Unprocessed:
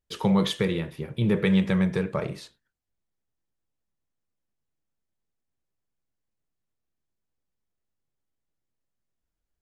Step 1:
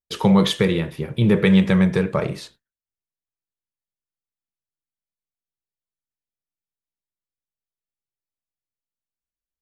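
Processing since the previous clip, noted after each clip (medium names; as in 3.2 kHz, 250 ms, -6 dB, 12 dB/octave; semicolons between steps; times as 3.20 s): gate with hold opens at -44 dBFS; trim +6.5 dB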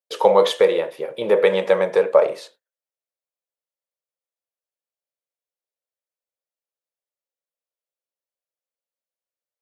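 dynamic bell 900 Hz, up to +6 dB, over -38 dBFS, Q 1.6; resonant high-pass 530 Hz, resonance Q 4.9; trim -2.5 dB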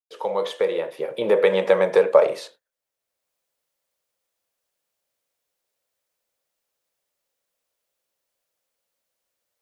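fade-in on the opening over 1.99 s; three bands compressed up and down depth 40%; trim +1.5 dB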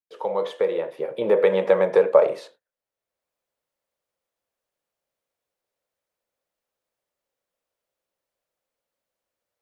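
treble shelf 2.4 kHz -9.5 dB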